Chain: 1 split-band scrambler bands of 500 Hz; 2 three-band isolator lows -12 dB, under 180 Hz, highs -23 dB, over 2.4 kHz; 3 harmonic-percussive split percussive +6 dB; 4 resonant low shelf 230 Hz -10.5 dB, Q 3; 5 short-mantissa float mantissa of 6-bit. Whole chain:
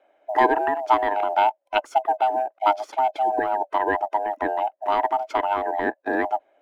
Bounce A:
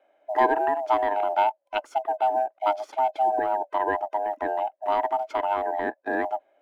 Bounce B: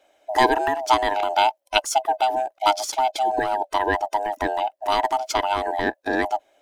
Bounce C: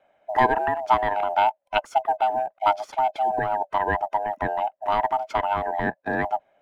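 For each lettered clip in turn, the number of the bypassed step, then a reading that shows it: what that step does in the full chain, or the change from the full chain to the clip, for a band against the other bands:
3, 500 Hz band +3.0 dB; 2, 4 kHz band +10.5 dB; 4, loudness change -1.0 LU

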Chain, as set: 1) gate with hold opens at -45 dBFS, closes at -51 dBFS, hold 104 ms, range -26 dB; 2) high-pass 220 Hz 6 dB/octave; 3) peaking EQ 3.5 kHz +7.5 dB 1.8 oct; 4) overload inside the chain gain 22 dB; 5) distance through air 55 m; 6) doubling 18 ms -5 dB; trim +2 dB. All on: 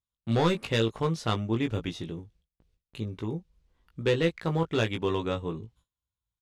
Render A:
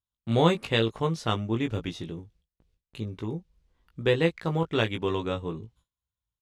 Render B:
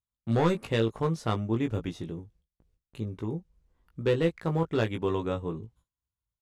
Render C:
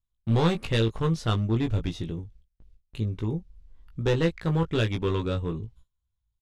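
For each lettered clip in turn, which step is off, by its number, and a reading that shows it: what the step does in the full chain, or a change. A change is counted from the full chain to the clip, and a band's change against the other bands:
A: 4, distortion -12 dB; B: 3, 4 kHz band -6.0 dB; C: 2, crest factor change -2.5 dB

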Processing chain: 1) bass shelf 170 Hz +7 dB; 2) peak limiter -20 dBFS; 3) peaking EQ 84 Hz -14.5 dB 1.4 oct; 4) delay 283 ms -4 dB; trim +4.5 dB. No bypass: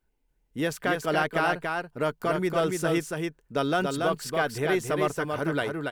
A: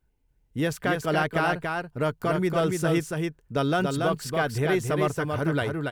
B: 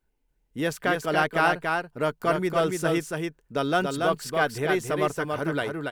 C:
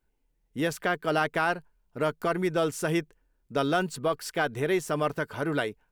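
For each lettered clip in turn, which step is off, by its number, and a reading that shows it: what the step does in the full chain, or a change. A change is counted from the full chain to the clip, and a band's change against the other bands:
3, 125 Hz band +6.0 dB; 2, crest factor change +2.5 dB; 4, momentary loudness spread change -1 LU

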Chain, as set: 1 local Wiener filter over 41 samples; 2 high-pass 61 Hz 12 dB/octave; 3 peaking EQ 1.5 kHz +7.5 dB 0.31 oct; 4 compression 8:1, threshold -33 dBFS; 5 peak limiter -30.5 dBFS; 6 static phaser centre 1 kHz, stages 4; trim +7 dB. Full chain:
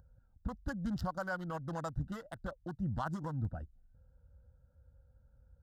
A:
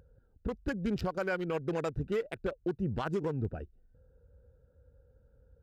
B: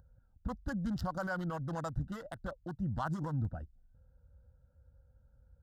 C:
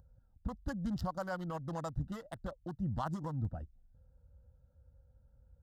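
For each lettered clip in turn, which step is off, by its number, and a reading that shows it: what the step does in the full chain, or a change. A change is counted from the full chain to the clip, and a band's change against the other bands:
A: 6, 500 Hz band +7.0 dB; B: 4, mean gain reduction 6.0 dB; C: 3, 2 kHz band -5.5 dB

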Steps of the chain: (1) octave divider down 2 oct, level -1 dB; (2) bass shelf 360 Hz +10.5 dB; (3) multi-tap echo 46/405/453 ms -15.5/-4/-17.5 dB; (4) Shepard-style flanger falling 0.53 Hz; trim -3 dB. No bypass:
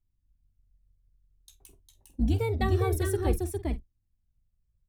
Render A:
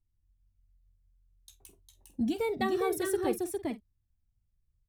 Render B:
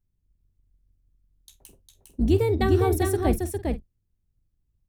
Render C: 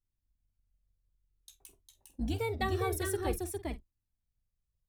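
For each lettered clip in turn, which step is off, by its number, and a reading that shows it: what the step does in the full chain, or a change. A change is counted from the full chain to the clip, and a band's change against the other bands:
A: 1, 125 Hz band -21.0 dB; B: 4, 125 Hz band -2.5 dB; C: 2, 125 Hz band -9.0 dB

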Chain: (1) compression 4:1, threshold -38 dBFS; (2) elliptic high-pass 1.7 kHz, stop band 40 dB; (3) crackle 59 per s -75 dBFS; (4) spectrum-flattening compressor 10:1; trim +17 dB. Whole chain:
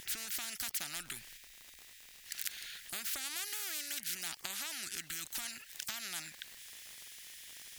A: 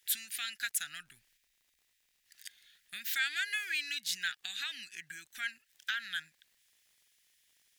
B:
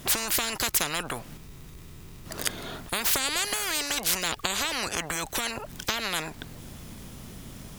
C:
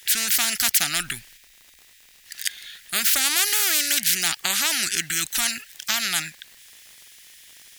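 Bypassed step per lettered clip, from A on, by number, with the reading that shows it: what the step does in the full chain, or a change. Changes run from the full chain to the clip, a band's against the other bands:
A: 4, crest factor change -2.5 dB; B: 2, 8 kHz band -8.5 dB; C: 1, mean gain reduction 11.0 dB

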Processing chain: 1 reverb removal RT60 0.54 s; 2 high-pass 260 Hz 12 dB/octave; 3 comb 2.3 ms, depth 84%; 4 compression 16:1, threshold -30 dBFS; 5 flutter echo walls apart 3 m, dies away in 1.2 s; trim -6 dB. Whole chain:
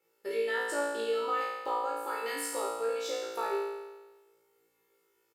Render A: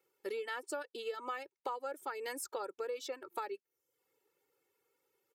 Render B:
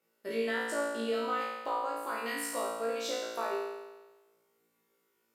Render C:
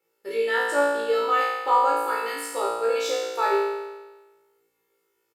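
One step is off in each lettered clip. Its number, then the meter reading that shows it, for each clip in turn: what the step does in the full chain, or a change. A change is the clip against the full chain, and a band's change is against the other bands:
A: 5, echo-to-direct 6.5 dB to none; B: 3, 250 Hz band +6.0 dB; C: 4, mean gain reduction 7.5 dB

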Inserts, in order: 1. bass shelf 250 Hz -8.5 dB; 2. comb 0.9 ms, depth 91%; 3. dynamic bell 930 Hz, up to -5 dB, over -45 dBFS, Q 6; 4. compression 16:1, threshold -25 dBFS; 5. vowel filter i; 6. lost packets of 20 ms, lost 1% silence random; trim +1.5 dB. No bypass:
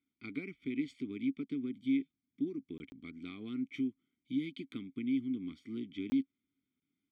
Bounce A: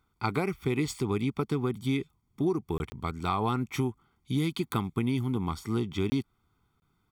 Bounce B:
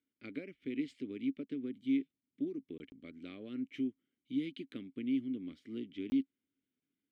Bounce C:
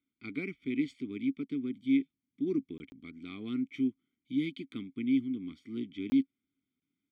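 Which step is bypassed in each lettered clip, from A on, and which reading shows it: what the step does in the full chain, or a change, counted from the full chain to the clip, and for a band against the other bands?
5, 250 Hz band -10.0 dB; 2, 500 Hz band +4.0 dB; 4, mean gain reduction 2.5 dB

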